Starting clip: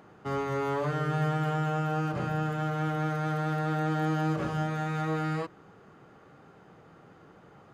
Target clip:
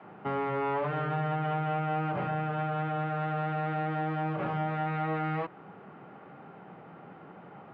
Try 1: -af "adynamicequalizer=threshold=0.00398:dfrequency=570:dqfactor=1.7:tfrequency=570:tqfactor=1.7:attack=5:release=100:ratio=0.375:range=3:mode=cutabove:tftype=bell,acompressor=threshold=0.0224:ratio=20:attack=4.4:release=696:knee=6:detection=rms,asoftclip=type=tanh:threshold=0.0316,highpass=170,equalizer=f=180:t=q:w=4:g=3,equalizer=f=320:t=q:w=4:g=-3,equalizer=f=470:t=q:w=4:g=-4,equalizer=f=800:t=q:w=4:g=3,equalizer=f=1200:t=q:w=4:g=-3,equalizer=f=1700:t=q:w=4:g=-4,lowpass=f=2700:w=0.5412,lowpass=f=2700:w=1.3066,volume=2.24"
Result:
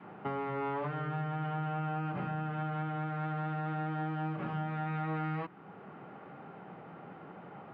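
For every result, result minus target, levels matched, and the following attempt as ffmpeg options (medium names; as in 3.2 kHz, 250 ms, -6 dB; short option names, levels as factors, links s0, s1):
compression: peak gain reduction +7.5 dB; 500 Hz band -2.5 dB
-af "adynamicequalizer=threshold=0.00398:dfrequency=570:dqfactor=1.7:tfrequency=570:tqfactor=1.7:attack=5:release=100:ratio=0.375:range=3:mode=cutabove:tftype=bell,acompressor=threshold=0.0562:ratio=20:attack=4.4:release=696:knee=6:detection=rms,asoftclip=type=tanh:threshold=0.0316,highpass=170,equalizer=f=180:t=q:w=4:g=3,equalizer=f=320:t=q:w=4:g=-3,equalizer=f=470:t=q:w=4:g=-4,equalizer=f=800:t=q:w=4:g=3,equalizer=f=1200:t=q:w=4:g=-3,equalizer=f=1700:t=q:w=4:g=-4,lowpass=f=2700:w=0.5412,lowpass=f=2700:w=1.3066,volume=2.24"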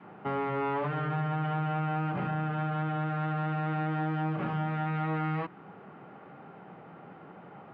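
500 Hz band -2.5 dB
-af "adynamicequalizer=threshold=0.00398:dfrequency=220:dqfactor=1.7:tfrequency=220:tqfactor=1.7:attack=5:release=100:ratio=0.375:range=3:mode=cutabove:tftype=bell,acompressor=threshold=0.0562:ratio=20:attack=4.4:release=696:knee=6:detection=rms,asoftclip=type=tanh:threshold=0.0316,highpass=170,equalizer=f=180:t=q:w=4:g=3,equalizer=f=320:t=q:w=4:g=-3,equalizer=f=470:t=q:w=4:g=-4,equalizer=f=800:t=q:w=4:g=3,equalizer=f=1200:t=q:w=4:g=-3,equalizer=f=1700:t=q:w=4:g=-4,lowpass=f=2700:w=0.5412,lowpass=f=2700:w=1.3066,volume=2.24"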